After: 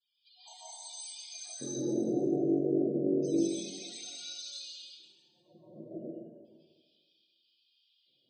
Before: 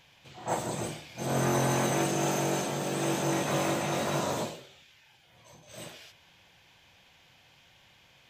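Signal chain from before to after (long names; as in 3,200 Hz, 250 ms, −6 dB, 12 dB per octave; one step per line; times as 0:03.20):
downward expander −51 dBFS
0:03.26–0:05.81: comb filter 5.6 ms, depth 67%
downward compressor, threshold −33 dBFS, peak gain reduction 10.5 dB
auto-filter band-pass square 0.31 Hz 320–4,800 Hz
spectral peaks only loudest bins 16
dense smooth reverb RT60 1.5 s, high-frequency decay 0.85×, pre-delay 120 ms, DRR −9 dB
level +4 dB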